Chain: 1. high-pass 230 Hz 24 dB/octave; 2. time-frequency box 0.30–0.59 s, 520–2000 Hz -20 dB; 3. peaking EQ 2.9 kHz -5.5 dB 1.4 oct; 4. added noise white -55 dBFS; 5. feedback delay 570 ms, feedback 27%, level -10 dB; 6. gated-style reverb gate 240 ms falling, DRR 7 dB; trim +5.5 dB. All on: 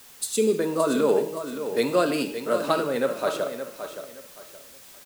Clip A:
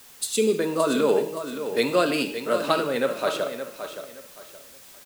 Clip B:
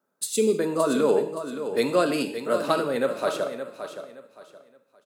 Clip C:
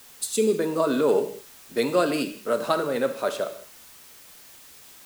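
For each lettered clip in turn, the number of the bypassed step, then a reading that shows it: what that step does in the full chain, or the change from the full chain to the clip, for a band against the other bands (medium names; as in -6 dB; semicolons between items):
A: 3, 4 kHz band +3.5 dB; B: 4, momentary loudness spread change -7 LU; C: 5, echo-to-direct -5.0 dB to -7.0 dB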